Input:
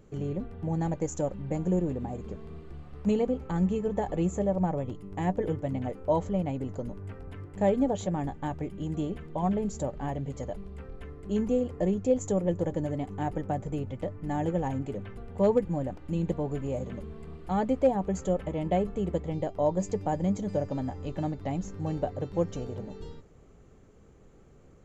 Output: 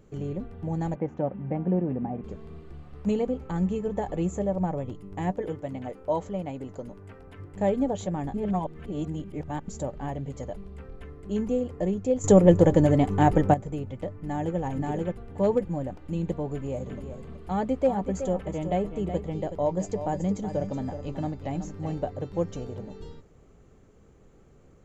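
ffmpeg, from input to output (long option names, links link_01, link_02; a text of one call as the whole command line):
ffmpeg -i in.wav -filter_complex "[0:a]asettb=1/sr,asplit=3[link_01][link_02][link_03];[link_01]atrim=end=0.954[link_04];[link_02]atrim=start=0.95:end=2.24,asetpts=PTS-STARTPTS,afade=type=in:duration=0.004:curve=qsin,afade=type=out:start_time=1.286:duration=0.004:curve=qsin,highpass=120,equalizer=frequency=130:width_type=q:width=4:gain=5,equalizer=frequency=230:width_type=q:width=4:gain=8,equalizer=frequency=750:width_type=q:width=4:gain=5,lowpass=frequency=2600:width=0.5412,lowpass=frequency=2600:width=1.3066[link_05];[link_03]atrim=start=2.236[link_06];[link_04][link_05]acrossfade=duration=0.004:curve1=hsin:curve2=qsin[link_07];[link_07][link_06]acrossfade=duration=0.004:curve1=qsin:curve2=hsin,asettb=1/sr,asplit=3[link_08][link_09][link_10];[link_08]atrim=end=5.314[link_11];[link_09]atrim=start=5.31:end=7.39,asetpts=PTS-STARTPTS,afade=type=in:duration=0.004:curve=qsin,afade=type=out:start_time=2.076:duration=0.004:curve=qsin,lowshelf=frequency=200:gain=-8.5[link_12];[link_10]atrim=start=7.386[link_13];[link_11][link_12]acrossfade=duration=0.004:curve1=hsin:curve2=qsin[link_14];[link_14][link_13]acrossfade=duration=0.004:curve1=qsin:curve2=hsin,asplit=2[link_15][link_16];[link_16]afade=type=in:start_time=14.12:duration=0.01,afade=type=out:start_time=14.58:duration=0.01,aecho=0:1:530|1060|1590:0.891251|0.133688|0.0200531[link_17];[link_15][link_17]amix=inputs=2:normalize=0,asplit=3[link_18][link_19][link_20];[link_18]afade=type=out:start_time=16.86:duration=0.02[link_21];[link_19]aecho=1:1:373:0.316,afade=type=in:start_time=16.86:duration=0.02,afade=type=out:start_time=21.94:duration=0.02[link_22];[link_20]afade=type=in:start_time=21.94:duration=0.02[link_23];[link_21][link_22][link_23]amix=inputs=3:normalize=0,asplit=5[link_24][link_25][link_26][link_27][link_28];[link_24]atrim=end=8.342[link_29];[link_25]atrim=start=8.338:end=9.682,asetpts=PTS-STARTPTS,areverse[link_30];[link_26]atrim=start=9.678:end=12.242[link_31];[link_27]atrim=start=12.238:end=13.542,asetpts=PTS-STARTPTS,volume=11.5dB[link_32];[link_28]atrim=start=13.538[link_33];[link_29][link_30]acrossfade=duration=0.004:curve1=hsin:curve2=hsin[link_34];[link_34][link_31]acrossfade=duration=0.004:curve1=hsin:curve2=hsin[link_35];[link_35][link_32]acrossfade=duration=0.004:curve1=hsin:curve2=hsin[link_36];[link_36][link_33]acrossfade=duration=0.004:curve1=hsin:curve2=hsin" out.wav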